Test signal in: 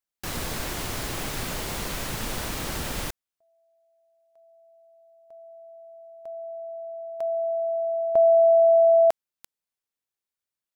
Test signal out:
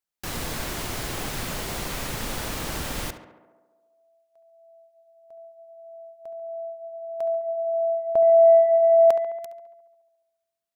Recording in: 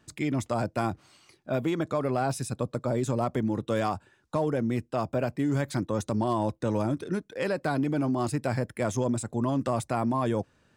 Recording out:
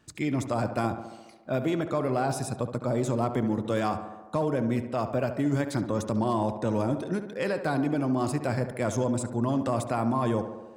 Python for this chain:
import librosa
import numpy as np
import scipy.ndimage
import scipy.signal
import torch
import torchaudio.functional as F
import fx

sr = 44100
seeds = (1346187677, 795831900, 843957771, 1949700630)

y = fx.echo_tape(x, sr, ms=70, feedback_pct=74, wet_db=-9, lp_hz=2300.0, drive_db=9.0, wow_cents=6)